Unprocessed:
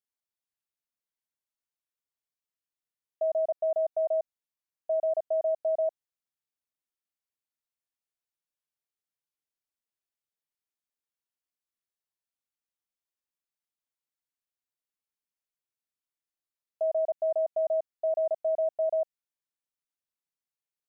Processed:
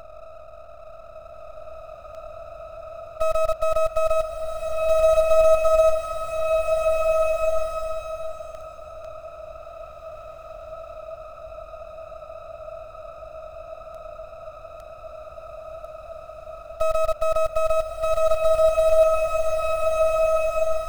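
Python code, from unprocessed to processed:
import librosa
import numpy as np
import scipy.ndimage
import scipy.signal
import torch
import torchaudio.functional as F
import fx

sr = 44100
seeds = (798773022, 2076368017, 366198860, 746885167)

p1 = fx.bin_compress(x, sr, power=0.2)
p2 = fx.quant_dither(p1, sr, seeds[0], bits=6, dither='none')
p3 = p1 + (p2 * librosa.db_to_amplitude(-9.5))
p4 = np.maximum(p3, 0.0)
p5 = fx.rev_bloom(p4, sr, seeds[1], attack_ms=1840, drr_db=-2.0)
y = p5 * librosa.db_to_amplitude(7.0)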